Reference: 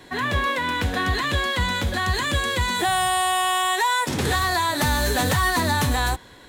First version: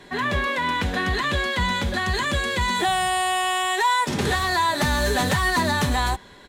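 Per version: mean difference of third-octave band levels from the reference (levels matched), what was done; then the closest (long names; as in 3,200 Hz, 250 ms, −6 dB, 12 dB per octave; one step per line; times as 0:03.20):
2.0 dB: high-shelf EQ 11,000 Hz −11 dB
comb filter 5 ms, depth 36%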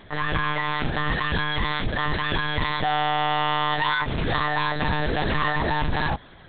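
13.0 dB: hard clipping −19 dBFS, distortion −14 dB
one-pitch LPC vocoder at 8 kHz 150 Hz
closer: first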